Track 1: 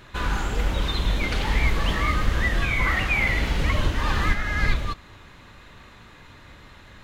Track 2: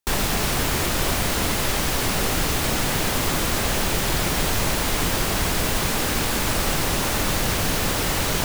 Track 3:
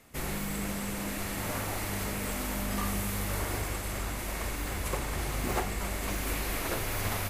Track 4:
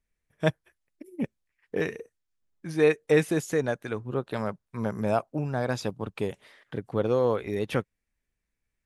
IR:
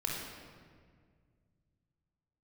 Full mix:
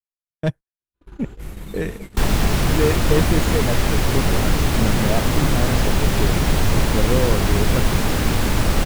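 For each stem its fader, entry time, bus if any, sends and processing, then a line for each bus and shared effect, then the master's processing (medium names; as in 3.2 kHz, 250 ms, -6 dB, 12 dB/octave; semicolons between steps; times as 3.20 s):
-18.5 dB, 0.80 s, no send, peaking EQ 350 Hz +9.5 dB 0.58 oct
0.0 dB, 2.10 s, no send, treble shelf 5.4 kHz -5.5 dB
-4.0 dB, 1.25 s, no send, detune thickener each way 57 cents
-0.5 dB, 0.00 s, no send, hard clipper -17 dBFS, distortion -16 dB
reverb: none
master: bass shelf 280 Hz +9 dB; gate -31 dBFS, range -44 dB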